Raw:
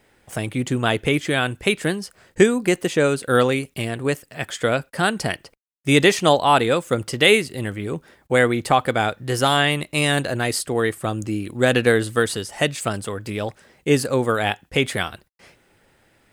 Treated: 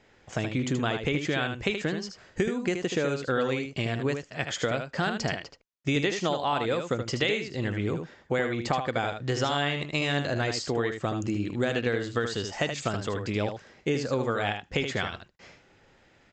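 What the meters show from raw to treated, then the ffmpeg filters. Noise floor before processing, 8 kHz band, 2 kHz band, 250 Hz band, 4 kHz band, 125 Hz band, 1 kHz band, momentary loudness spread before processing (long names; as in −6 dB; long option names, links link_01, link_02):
−61 dBFS, −11.0 dB, −8.5 dB, −7.0 dB, −8.5 dB, −6.0 dB, −9.0 dB, 13 LU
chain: -af "acompressor=threshold=-23dB:ratio=6,aecho=1:1:77:0.447,aresample=16000,aresample=44100,volume=-1.5dB"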